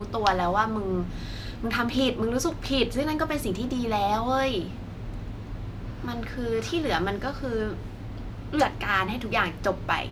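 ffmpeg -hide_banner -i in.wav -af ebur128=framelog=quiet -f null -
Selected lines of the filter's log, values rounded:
Integrated loudness:
  I:         -27.4 LUFS
  Threshold: -37.8 LUFS
Loudness range:
  LRA:         4.4 LU
  Threshold: -48.2 LUFS
  LRA low:   -30.8 LUFS
  LRA high:  -26.4 LUFS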